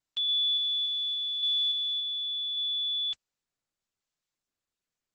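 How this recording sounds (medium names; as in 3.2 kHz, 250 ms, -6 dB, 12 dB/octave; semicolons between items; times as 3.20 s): random-step tremolo; Opus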